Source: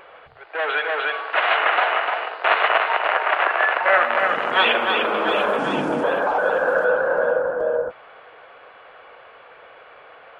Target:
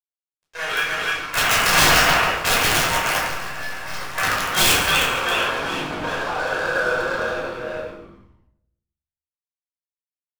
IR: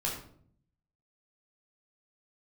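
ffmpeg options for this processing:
-filter_complex "[0:a]highpass=40,equalizer=frequency=2800:width=0.58:gain=11.5,bandreject=frequency=580:width=12,asplit=3[link_01][link_02][link_03];[link_01]afade=type=out:start_time=1.72:duration=0.02[link_04];[link_02]acontrast=84,afade=type=in:start_time=1.72:duration=0.02,afade=type=out:start_time=2.35:duration=0.02[link_05];[link_03]afade=type=in:start_time=2.35:duration=0.02[link_06];[link_04][link_05][link_06]amix=inputs=3:normalize=0,aeval=exprs='sgn(val(0))*max(abs(val(0))-0.0708,0)':channel_layout=same,asplit=3[link_07][link_08][link_09];[link_07]afade=type=out:start_time=4.72:duration=0.02[link_10];[link_08]afreqshift=40,afade=type=in:start_time=4.72:duration=0.02,afade=type=out:start_time=5.54:duration=0.02[link_11];[link_09]afade=type=in:start_time=5.54:duration=0.02[link_12];[link_10][link_11][link_12]amix=inputs=3:normalize=0,aeval=exprs='(mod(1.68*val(0)+1,2)-1)/1.68':channel_layout=same,asettb=1/sr,asplit=3[link_13][link_14][link_15];[link_13]atrim=end=3.264[link_16];[link_14]atrim=start=3.26:end=4.18,asetpts=PTS-STARTPTS,afade=type=in:duration=0.004:curve=qsin,afade=type=out:start_time=0.916:duration=0.004:curve=qsin,aeval=exprs='(tanh(17.8*val(0)+0.2)-tanh(0.2))/17.8':channel_layout=same[link_17];[link_15]atrim=start=4.176[link_18];[link_16][link_17]acrossfade=duration=0.004:curve1=hsin:curve2=qsin[link_19];[link_19][link_18]acrossfade=duration=0.004:curve1=qsin:curve2=hsin,asplit=5[link_20][link_21][link_22][link_23][link_24];[link_21]adelay=140,afreqshift=-140,volume=-11dB[link_25];[link_22]adelay=280,afreqshift=-280,volume=-18.7dB[link_26];[link_23]adelay=420,afreqshift=-420,volume=-26.5dB[link_27];[link_24]adelay=560,afreqshift=-560,volume=-34.2dB[link_28];[link_20][link_25][link_26][link_27][link_28]amix=inputs=5:normalize=0[link_29];[1:a]atrim=start_sample=2205[link_30];[link_29][link_30]afir=irnorm=-1:irlink=0,volume=-8.5dB"

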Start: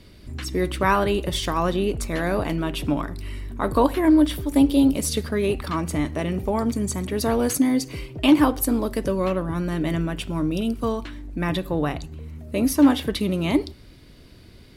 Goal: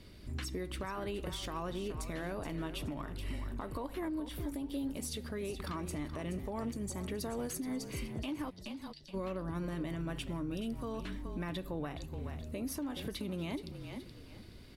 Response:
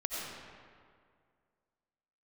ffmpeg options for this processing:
-filter_complex "[0:a]acompressor=threshold=-23dB:ratio=12,asplit=3[link_01][link_02][link_03];[link_01]afade=type=out:start_time=8.49:duration=0.02[link_04];[link_02]asuperpass=centerf=4200:order=4:qfactor=2.4,afade=type=in:start_time=8.49:duration=0.02,afade=type=out:start_time=9.13:duration=0.02[link_05];[link_03]afade=type=in:start_time=9.13:duration=0.02[link_06];[link_04][link_05][link_06]amix=inputs=3:normalize=0,asplit=4[link_07][link_08][link_09][link_10];[link_08]adelay=424,afreqshift=-36,volume=-12dB[link_11];[link_09]adelay=848,afreqshift=-72,volume=-22.5dB[link_12];[link_10]adelay=1272,afreqshift=-108,volume=-32.9dB[link_13];[link_07][link_11][link_12][link_13]amix=inputs=4:normalize=0,alimiter=limit=-23.5dB:level=0:latency=1:release=292,volume=-6dB"

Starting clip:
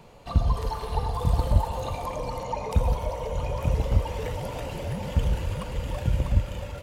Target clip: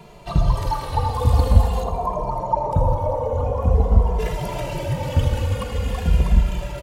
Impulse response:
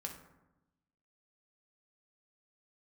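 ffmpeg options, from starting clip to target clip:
-filter_complex "[0:a]asplit=3[link_01][link_02][link_03];[link_01]afade=type=out:start_time=1.82:duration=0.02[link_04];[link_02]highshelf=frequency=1500:width_type=q:width=1.5:gain=-13.5,afade=type=in:start_time=1.82:duration=0.02,afade=type=out:start_time=4.18:duration=0.02[link_05];[link_03]afade=type=in:start_time=4.18:duration=0.02[link_06];[link_04][link_05][link_06]amix=inputs=3:normalize=0,aecho=1:1:80|160|240|320|400|480:0.251|0.141|0.0788|0.0441|0.0247|0.0138,asplit=2[link_07][link_08];[link_08]adelay=2.5,afreqshift=-0.47[link_09];[link_07][link_09]amix=inputs=2:normalize=1,volume=9dB"

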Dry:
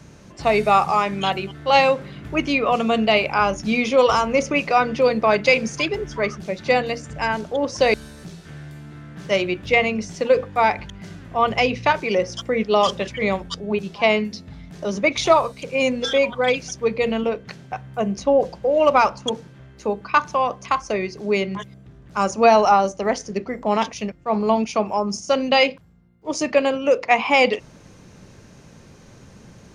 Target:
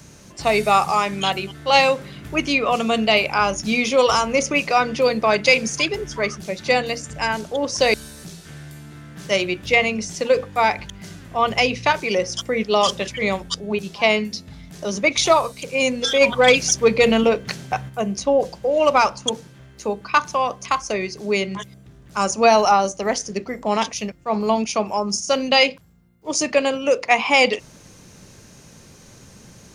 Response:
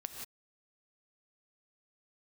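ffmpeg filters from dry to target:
-filter_complex "[0:a]crystalizer=i=2.5:c=0,asplit=3[link_01][link_02][link_03];[link_01]afade=type=out:start_time=16.2:duration=0.02[link_04];[link_02]acontrast=82,afade=type=in:start_time=16.2:duration=0.02,afade=type=out:start_time=17.88:duration=0.02[link_05];[link_03]afade=type=in:start_time=17.88:duration=0.02[link_06];[link_04][link_05][link_06]amix=inputs=3:normalize=0,volume=-1dB"

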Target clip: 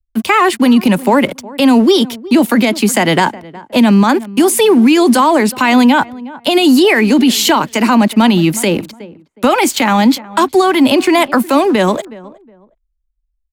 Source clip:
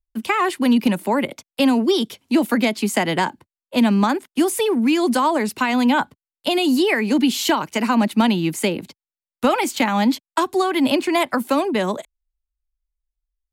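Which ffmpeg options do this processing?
ffmpeg -i in.wav -filter_complex "[0:a]acrossover=split=120[link_01][link_02];[link_02]aeval=exprs='sgn(val(0))*max(abs(val(0))-0.00501,0)':channel_layout=same[link_03];[link_01][link_03]amix=inputs=2:normalize=0,asplit=2[link_04][link_05];[link_05]adelay=365,lowpass=frequency=1200:poles=1,volume=-21dB,asplit=2[link_06][link_07];[link_07]adelay=365,lowpass=frequency=1200:poles=1,volume=0.26[link_08];[link_04][link_06][link_08]amix=inputs=3:normalize=0,alimiter=level_in=12.5dB:limit=-1dB:release=50:level=0:latency=1,volume=-1dB" out.wav

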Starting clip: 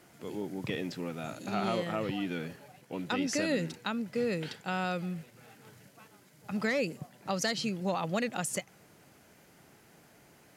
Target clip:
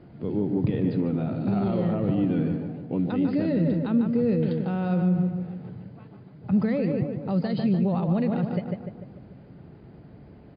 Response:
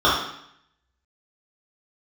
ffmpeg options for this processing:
-filter_complex "[0:a]lowshelf=frequency=210:gain=8,asplit=2[link_01][link_02];[link_02]adelay=148,lowpass=frequency=2300:poles=1,volume=-6.5dB,asplit=2[link_03][link_04];[link_04]adelay=148,lowpass=frequency=2300:poles=1,volume=0.52,asplit=2[link_05][link_06];[link_06]adelay=148,lowpass=frequency=2300:poles=1,volume=0.52,asplit=2[link_07][link_08];[link_08]adelay=148,lowpass=frequency=2300:poles=1,volume=0.52,asplit=2[link_09][link_10];[link_10]adelay=148,lowpass=frequency=2300:poles=1,volume=0.52,asplit=2[link_11][link_12];[link_12]adelay=148,lowpass=frequency=2300:poles=1,volume=0.52[link_13];[link_01][link_03][link_05][link_07][link_09][link_11][link_13]amix=inputs=7:normalize=0,alimiter=limit=-24dB:level=0:latency=1:release=49,tiltshelf=frequency=850:gain=9.5,volume=2.5dB" -ar 11025 -c:a libmp3lame -b:a 32k

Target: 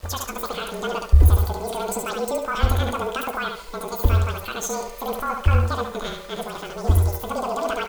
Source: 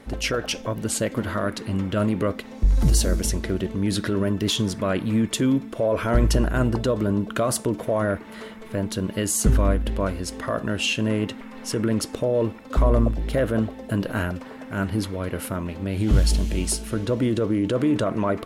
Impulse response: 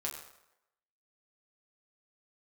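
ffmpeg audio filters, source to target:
-filter_complex "[0:a]asetrate=103194,aresample=44100,lowshelf=frequency=120:width_type=q:width=3:gain=12.5,asplit=2[link_01][link_02];[link_02]aecho=0:1:70|140|210|280:0.562|0.174|0.054|0.0168[link_03];[link_01][link_03]amix=inputs=2:normalize=0,afreqshift=-40,flanger=delay=9.6:depth=8.7:regen=-66:speed=0.89:shape=sinusoidal,acrusher=bits=7:mix=0:aa=0.000001"

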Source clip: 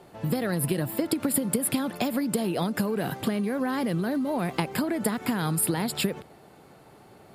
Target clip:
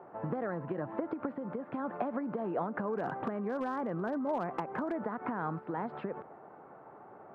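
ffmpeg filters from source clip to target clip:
ffmpeg -i in.wav -filter_complex "[0:a]highpass=frequency=310:poles=1,acompressor=threshold=-31dB:ratio=10,lowpass=frequency=1300:width=0.5412,lowpass=frequency=1300:width=1.3066,tiltshelf=frequency=660:gain=-4.5,asettb=1/sr,asplit=3[link_01][link_02][link_03];[link_01]atrim=end=2.874[link_04];[link_02]atrim=start=2.87:end=4.99,asetpts=PTS-STARTPTS,afade=type=in:duration=0.004:curve=qsin,afade=type=out:start_time=2.116:duration=0.004:curve=qsin,volume=29.5dB,asoftclip=hard,volume=-29.5dB[link_05];[link_03]atrim=start=4.986[link_06];[link_04][link_05]acrossfade=duration=0.004:curve1=hsin:curve2=qsin[link_07];[link_07][link_06]acrossfade=duration=0.004:curve1=qsin:curve2=hsin,volume=3dB" out.wav

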